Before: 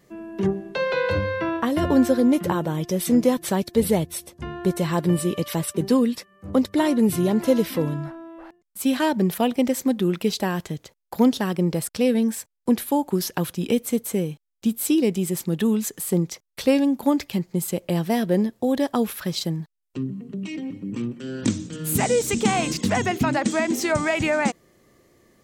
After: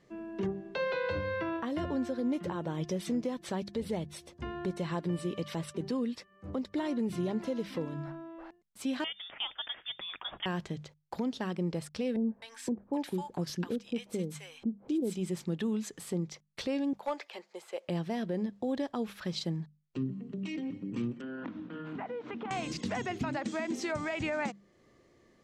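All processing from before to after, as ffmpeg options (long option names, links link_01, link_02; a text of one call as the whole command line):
ffmpeg -i in.wav -filter_complex "[0:a]asettb=1/sr,asplit=3[link_01][link_02][link_03];[link_01]atrim=end=9.044[link_04];[link_02]atrim=start=9.04:end=10.46,asetpts=PTS-STARTPTS,afade=type=in:duration=0.004:curve=qsin,afade=type=out:start_time=1.416:duration=0.004:curve=qsin,highpass=750,acrusher=bits=6:mode=log:mix=0:aa=0.000001,lowpass=frequency=3200:width_type=q:width=0.5098,lowpass=frequency=3200:width_type=q:width=0.6013,lowpass=frequency=3200:width_type=q:width=0.9,lowpass=frequency=3200:width_type=q:width=2.563,afreqshift=-3800[link_05];[link_03]atrim=start=10.456[link_06];[link_04][link_05]acrossfade=duration=0.004:curve1=hsin:curve2=qsin[link_07];[link_07][link_06]acrossfade=duration=0.004:curve1=qsin:curve2=hsin,asettb=1/sr,asplit=3[link_08][link_09][link_10];[link_08]atrim=end=12.164[link_11];[link_09]atrim=start=12.16:end=15.15,asetpts=PTS-STARTPTS,afade=type=in:duration=0.004:curve=qsin,afade=type=out:start_time=2.986:duration=0.004:curve=qsin,acrossover=split=860[link_12][link_13];[link_13]adelay=260[link_14];[link_12][link_14]amix=inputs=2:normalize=0,atrim=end_sample=131859,acompressor=mode=upward:threshold=-37dB:ratio=2.5:attack=3.2:release=140:knee=2.83:detection=peak,aeval=exprs='val(0)+0.00316*(sin(2*PI*50*n/s)+sin(2*PI*2*50*n/s)/2+sin(2*PI*3*50*n/s)/3+sin(2*PI*4*50*n/s)/4+sin(2*PI*5*50*n/s)/5)':channel_layout=same[link_15];[link_10]atrim=start=15.146[link_16];[link_11][link_15]acrossfade=duration=0.004:curve1=hsin:curve2=qsin[link_17];[link_17][link_16]acrossfade=duration=0.004:curve1=qsin:curve2=hsin,asettb=1/sr,asplit=3[link_18][link_19][link_20];[link_18]atrim=end=16.934[link_21];[link_19]atrim=start=16.93:end=17.88,asetpts=PTS-STARTPTS,afade=type=in:duration=0.004:curve=qsin,afade=type=out:start_time=0.946:duration=0.004:curve=qsin,highpass=frequency=500:width=0.5412,highpass=frequency=500:width=1.3066,acrossover=split=2600[link_22][link_23];[link_23]acompressor=threshold=-42dB:ratio=4:attack=1:release=60[link_24];[link_22][link_24]amix=inputs=2:normalize=0,asoftclip=type=hard:threshold=-18.5dB[link_25];[link_20]atrim=start=17.876[link_26];[link_21][link_25]acrossfade=duration=0.004:curve1=hsin:curve2=qsin[link_27];[link_27][link_26]acrossfade=duration=0.004:curve1=qsin:curve2=hsin,asettb=1/sr,asplit=3[link_28][link_29][link_30];[link_28]atrim=end=21.214[link_31];[link_29]atrim=start=21.21:end=22.51,asetpts=PTS-STARTPTS,afade=type=in:duration=0.004:curve=qsin,afade=type=out:start_time=1.296:duration=0.004:curve=qsin,highpass=230,equalizer=frequency=280:width_type=q:width=4:gain=4,equalizer=frequency=410:width_type=q:width=4:gain=-4,equalizer=frequency=710:width_type=q:width=4:gain=5,equalizer=frequency=1000:width_type=q:width=4:gain=8,equalizer=frequency=1400:width_type=q:width=4:gain=6,equalizer=frequency=2300:width_type=q:width=4:gain=-4,lowpass=frequency=2600:width=0.5412,lowpass=frequency=2600:width=1.3066,acompressor=threshold=-31dB:ratio=6:attack=3.2:release=140:knee=1:detection=peak[link_32];[link_30]atrim=start=22.506[link_33];[link_31][link_32]acrossfade=duration=0.004:curve1=hsin:curve2=qsin[link_34];[link_34][link_33]acrossfade=duration=0.004:curve1=qsin:curve2=hsin,lowpass=5600,bandreject=frequency=50:width_type=h:width=6,bandreject=frequency=100:width_type=h:width=6,bandreject=frequency=150:width_type=h:width=6,bandreject=frequency=200:width_type=h:width=6,alimiter=limit=-19dB:level=0:latency=1:release=364,volume=-5.5dB" out.wav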